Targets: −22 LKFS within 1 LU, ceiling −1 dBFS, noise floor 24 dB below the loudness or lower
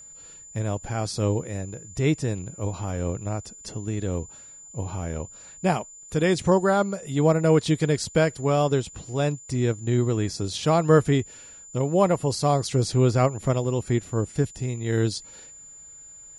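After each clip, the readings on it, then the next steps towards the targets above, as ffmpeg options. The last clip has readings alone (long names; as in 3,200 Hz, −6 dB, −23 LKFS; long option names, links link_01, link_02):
interfering tone 7,100 Hz; level of the tone −43 dBFS; integrated loudness −24.5 LKFS; sample peak −6.5 dBFS; target loudness −22.0 LKFS
→ -af "bandreject=frequency=7100:width=30"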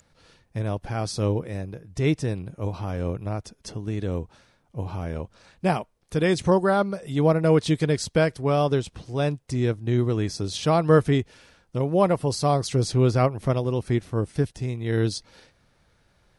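interfering tone none found; integrated loudness −24.5 LKFS; sample peak −6.5 dBFS; target loudness −22.0 LKFS
→ -af "volume=2.5dB"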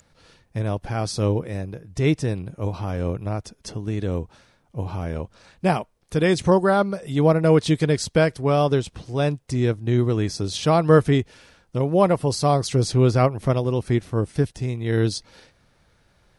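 integrated loudness −22.0 LKFS; sample peak −4.0 dBFS; background noise floor −62 dBFS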